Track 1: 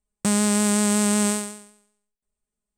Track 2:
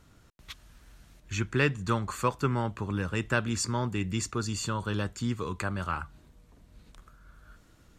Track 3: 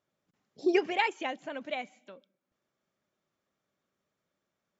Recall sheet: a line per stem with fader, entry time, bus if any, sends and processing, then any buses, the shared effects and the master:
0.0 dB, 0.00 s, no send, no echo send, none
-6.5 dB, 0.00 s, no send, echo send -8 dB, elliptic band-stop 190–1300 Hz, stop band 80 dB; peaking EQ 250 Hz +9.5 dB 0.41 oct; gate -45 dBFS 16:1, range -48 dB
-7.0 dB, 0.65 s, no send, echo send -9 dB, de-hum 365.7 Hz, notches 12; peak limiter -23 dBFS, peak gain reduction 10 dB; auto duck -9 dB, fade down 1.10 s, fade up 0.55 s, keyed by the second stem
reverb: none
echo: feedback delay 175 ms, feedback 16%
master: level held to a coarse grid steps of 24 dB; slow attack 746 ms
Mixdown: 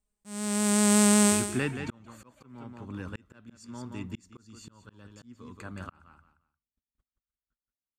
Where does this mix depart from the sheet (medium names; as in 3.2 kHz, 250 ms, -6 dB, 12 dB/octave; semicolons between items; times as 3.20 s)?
stem 2: missing elliptic band-stop 190–1300 Hz, stop band 80 dB; master: missing level held to a coarse grid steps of 24 dB